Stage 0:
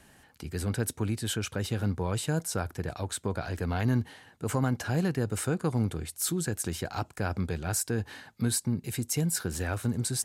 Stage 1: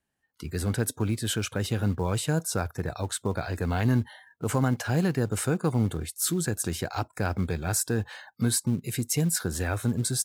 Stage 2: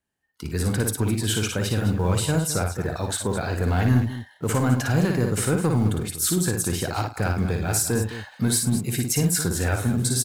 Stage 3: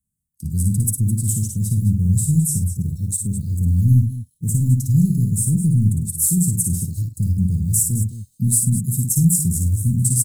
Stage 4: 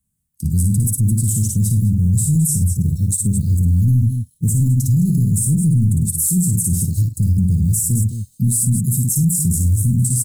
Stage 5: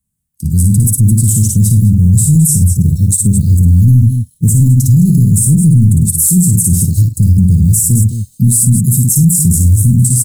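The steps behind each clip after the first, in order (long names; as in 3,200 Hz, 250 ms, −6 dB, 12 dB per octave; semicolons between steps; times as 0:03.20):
noise reduction from a noise print of the clip's start 28 dB; in parallel at −8 dB: floating-point word with a short mantissa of 2 bits
leveller curve on the samples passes 1; multi-tap delay 56/101/211 ms −4.5/−15.5/−12 dB
Chebyshev band-stop filter 180–8,100 Hz, order 3; level +7.5 dB
brickwall limiter −16 dBFS, peak gain reduction 10.5 dB; level +7 dB
automatic gain control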